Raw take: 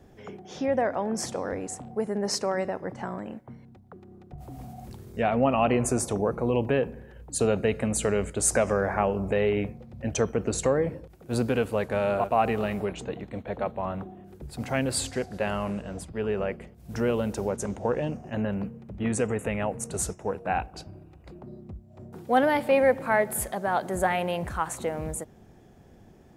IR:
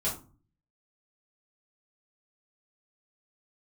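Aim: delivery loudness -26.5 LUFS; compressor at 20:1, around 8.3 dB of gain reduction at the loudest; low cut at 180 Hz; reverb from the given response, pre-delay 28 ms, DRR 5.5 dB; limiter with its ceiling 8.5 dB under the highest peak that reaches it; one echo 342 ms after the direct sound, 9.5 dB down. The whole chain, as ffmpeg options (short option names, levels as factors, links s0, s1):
-filter_complex "[0:a]highpass=180,acompressor=threshold=0.0562:ratio=20,alimiter=limit=0.075:level=0:latency=1,aecho=1:1:342:0.335,asplit=2[s0][s1];[1:a]atrim=start_sample=2205,adelay=28[s2];[s1][s2]afir=irnorm=-1:irlink=0,volume=0.251[s3];[s0][s3]amix=inputs=2:normalize=0,volume=1.88"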